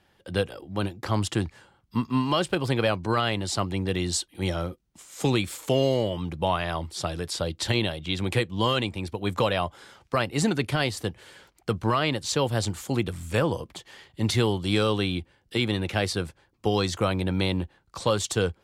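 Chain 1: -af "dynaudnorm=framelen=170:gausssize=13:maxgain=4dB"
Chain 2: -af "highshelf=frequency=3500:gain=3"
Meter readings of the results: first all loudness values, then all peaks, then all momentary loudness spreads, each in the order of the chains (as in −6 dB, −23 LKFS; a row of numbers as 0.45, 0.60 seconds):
−23.5, −26.5 LKFS; −8.0, −11.0 dBFS; 9, 8 LU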